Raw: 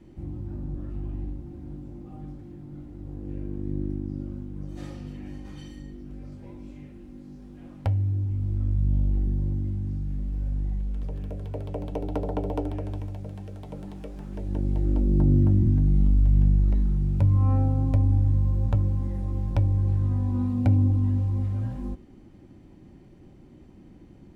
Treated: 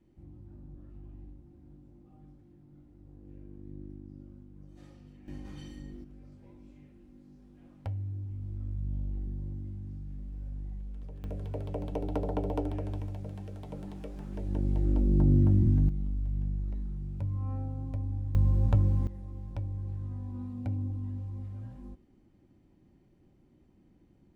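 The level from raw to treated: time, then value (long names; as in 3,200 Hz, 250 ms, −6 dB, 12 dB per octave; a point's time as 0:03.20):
−15 dB
from 0:05.28 −3.5 dB
from 0:06.04 −11 dB
from 0:11.24 −3 dB
from 0:15.89 −13 dB
from 0:18.35 −1 dB
from 0:19.07 −13 dB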